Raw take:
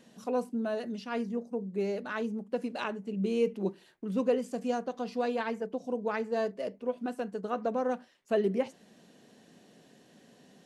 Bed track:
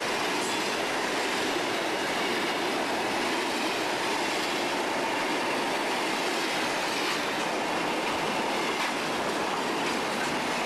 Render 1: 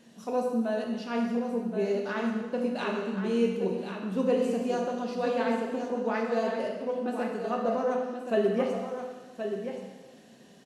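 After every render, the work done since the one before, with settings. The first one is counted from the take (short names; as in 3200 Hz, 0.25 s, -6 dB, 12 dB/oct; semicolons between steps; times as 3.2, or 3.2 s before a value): on a send: echo 1.075 s -8 dB; on the sum: plate-style reverb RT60 1.3 s, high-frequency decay 1×, DRR 0 dB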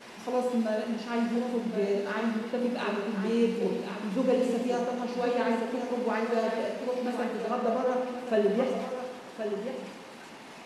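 add bed track -18.5 dB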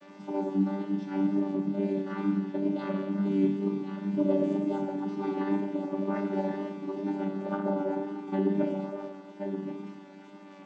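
chord vocoder bare fifth, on G3; wow and flutter 21 cents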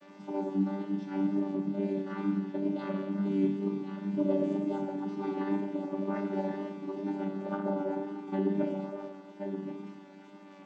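gain -2.5 dB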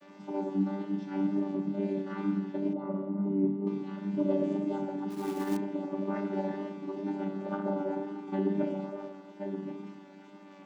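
2.73–3.67 polynomial smoothing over 65 samples; 5.1–5.57 short-mantissa float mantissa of 2-bit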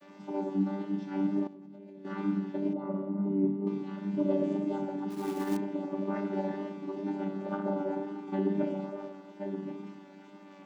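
1.47–2.05 level quantiser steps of 24 dB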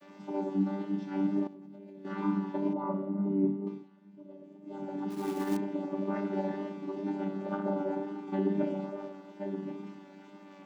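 2.22–2.94 bell 1000 Hz +14 dB 0.47 oct; 3.49–5.02 dip -21.5 dB, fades 0.40 s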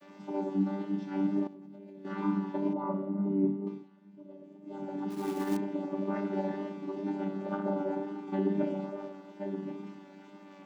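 nothing audible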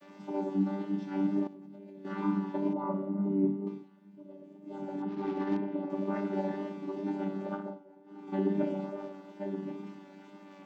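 5.02–5.9 Gaussian blur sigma 2.2 samples; 7.45–8.39 dip -23 dB, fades 0.35 s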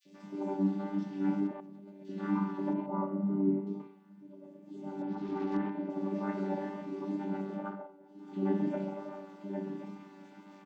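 three bands offset in time highs, lows, mids 40/130 ms, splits 470/3000 Hz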